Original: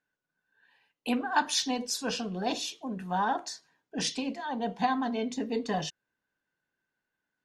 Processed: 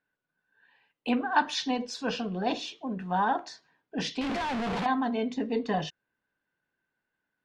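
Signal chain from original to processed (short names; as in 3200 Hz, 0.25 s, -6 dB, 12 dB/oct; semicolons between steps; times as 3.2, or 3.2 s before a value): 4.21–4.86 infinite clipping; LPF 3500 Hz 12 dB/oct; gain +2 dB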